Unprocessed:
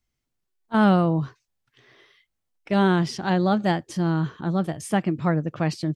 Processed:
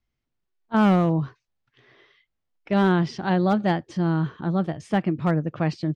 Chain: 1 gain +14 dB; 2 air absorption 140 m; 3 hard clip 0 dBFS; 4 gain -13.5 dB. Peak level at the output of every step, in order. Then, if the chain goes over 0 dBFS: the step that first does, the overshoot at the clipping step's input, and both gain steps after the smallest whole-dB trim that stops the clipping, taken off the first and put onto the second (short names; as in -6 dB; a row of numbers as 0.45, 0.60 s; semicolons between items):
+4.5, +4.0, 0.0, -13.5 dBFS; step 1, 4.0 dB; step 1 +10 dB, step 4 -9.5 dB